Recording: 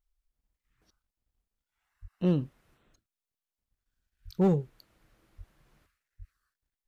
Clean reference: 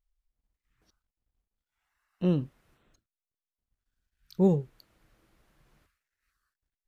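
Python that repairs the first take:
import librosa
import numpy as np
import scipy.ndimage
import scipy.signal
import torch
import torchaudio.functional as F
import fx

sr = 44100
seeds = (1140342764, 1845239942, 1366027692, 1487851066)

y = fx.fix_declip(x, sr, threshold_db=-18.0)
y = fx.fix_deplosive(y, sr, at_s=(2.01, 4.24, 5.37, 6.18))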